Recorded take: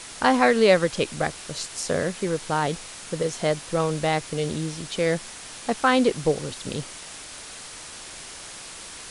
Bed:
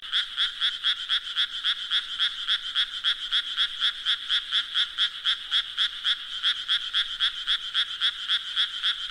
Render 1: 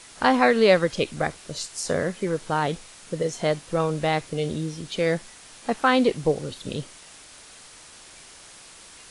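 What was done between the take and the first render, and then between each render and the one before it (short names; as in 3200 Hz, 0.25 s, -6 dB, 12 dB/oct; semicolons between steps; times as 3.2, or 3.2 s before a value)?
noise print and reduce 7 dB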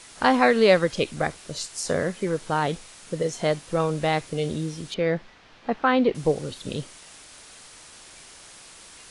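4.94–6.15 air absorption 250 m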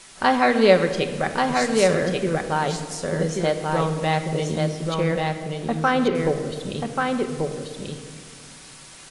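echo 1.136 s -3.5 dB; shoebox room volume 4000 m³, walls mixed, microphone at 1.1 m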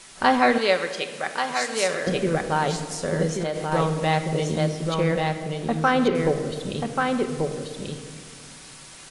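0.58–2.07 HPF 1000 Hz 6 dB/oct; 3.32–3.72 compressor, threshold -22 dBFS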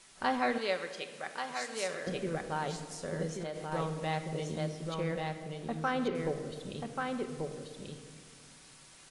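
gain -12 dB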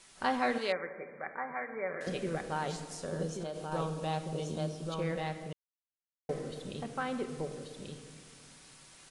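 0.72–2.01 brick-wall FIR low-pass 2400 Hz; 3.05–5.02 bell 2000 Hz -14.5 dB 0.25 oct; 5.53–6.29 mute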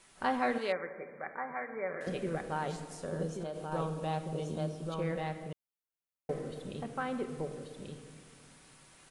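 bell 5300 Hz -6.5 dB 1.7 oct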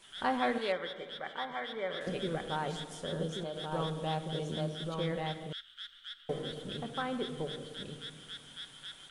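add bed -21 dB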